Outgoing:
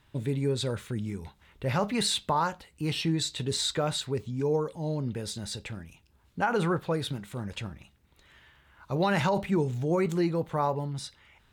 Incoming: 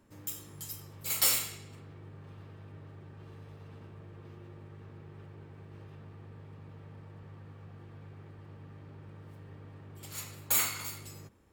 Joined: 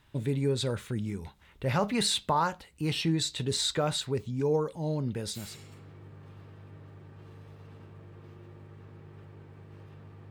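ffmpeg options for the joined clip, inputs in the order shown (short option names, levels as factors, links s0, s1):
-filter_complex "[0:a]apad=whole_dur=10.3,atrim=end=10.3,atrim=end=5.61,asetpts=PTS-STARTPTS[s0];[1:a]atrim=start=1.34:end=6.31,asetpts=PTS-STARTPTS[s1];[s0][s1]acrossfade=d=0.28:c1=tri:c2=tri"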